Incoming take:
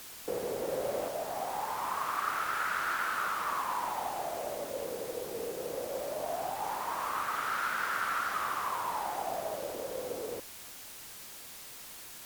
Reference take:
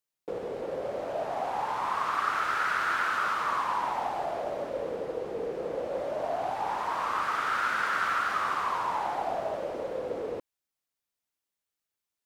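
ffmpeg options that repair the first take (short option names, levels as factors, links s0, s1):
-af "afwtdn=0.0045,asetnsamples=n=441:p=0,asendcmd='1.08 volume volume 4.5dB',volume=1"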